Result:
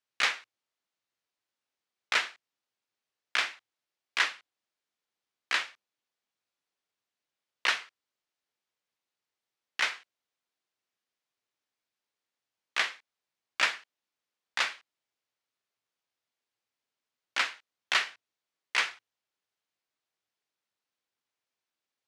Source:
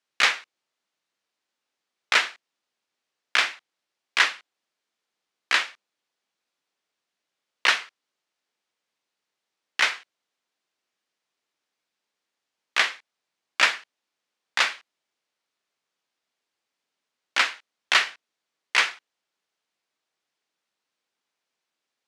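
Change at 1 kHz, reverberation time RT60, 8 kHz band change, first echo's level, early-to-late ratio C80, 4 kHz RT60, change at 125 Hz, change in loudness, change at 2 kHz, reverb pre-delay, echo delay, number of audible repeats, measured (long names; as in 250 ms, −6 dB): −7.0 dB, no reverb audible, −7.0 dB, no echo audible, no reverb audible, no reverb audible, can't be measured, −7.0 dB, −7.0 dB, no reverb audible, no echo audible, no echo audible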